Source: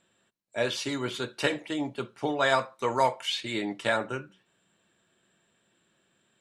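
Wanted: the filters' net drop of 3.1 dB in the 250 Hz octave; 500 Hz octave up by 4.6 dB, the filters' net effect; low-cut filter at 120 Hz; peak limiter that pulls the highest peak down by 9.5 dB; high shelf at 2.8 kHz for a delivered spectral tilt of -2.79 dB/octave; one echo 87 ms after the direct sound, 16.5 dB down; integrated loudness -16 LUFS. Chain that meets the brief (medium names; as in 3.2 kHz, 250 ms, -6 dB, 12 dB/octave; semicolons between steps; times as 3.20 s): high-pass 120 Hz; peaking EQ 250 Hz -7 dB; peaking EQ 500 Hz +7 dB; treble shelf 2.8 kHz +4 dB; peak limiter -17 dBFS; delay 87 ms -16.5 dB; trim +13.5 dB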